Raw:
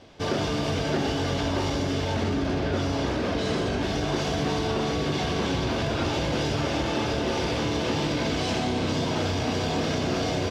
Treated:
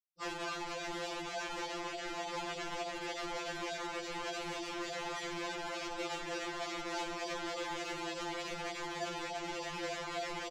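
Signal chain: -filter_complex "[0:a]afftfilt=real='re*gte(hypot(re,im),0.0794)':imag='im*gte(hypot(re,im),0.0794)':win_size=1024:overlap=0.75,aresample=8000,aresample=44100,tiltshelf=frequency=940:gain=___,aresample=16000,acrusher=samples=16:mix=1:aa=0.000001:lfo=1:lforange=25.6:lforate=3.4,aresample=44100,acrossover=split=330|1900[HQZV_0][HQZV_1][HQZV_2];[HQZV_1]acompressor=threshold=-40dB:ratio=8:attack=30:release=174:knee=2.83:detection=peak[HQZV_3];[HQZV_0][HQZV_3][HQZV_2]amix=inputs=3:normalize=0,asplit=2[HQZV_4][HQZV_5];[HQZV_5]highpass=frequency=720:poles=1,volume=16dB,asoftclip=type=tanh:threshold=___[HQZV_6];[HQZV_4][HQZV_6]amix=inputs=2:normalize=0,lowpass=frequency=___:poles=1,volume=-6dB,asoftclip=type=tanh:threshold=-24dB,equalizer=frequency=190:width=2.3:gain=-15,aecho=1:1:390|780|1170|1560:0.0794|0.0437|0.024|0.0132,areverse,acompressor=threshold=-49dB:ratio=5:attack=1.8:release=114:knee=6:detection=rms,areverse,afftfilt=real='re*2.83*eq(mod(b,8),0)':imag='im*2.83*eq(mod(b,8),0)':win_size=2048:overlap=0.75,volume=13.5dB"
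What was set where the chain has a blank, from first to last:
-7, -18.5dB, 3100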